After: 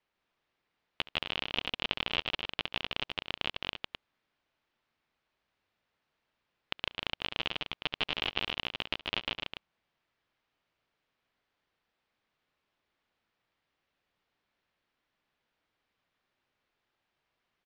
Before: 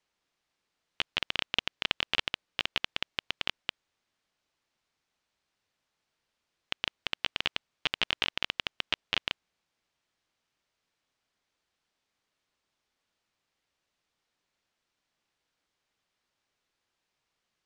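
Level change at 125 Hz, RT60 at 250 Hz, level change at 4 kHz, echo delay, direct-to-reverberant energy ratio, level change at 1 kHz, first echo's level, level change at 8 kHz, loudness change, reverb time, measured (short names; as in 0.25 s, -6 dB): +2.5 dB, none, -2.0 dB, 70 ms, none, 0.0 dB, -18.5 dB, n/a, -2.0 dB, none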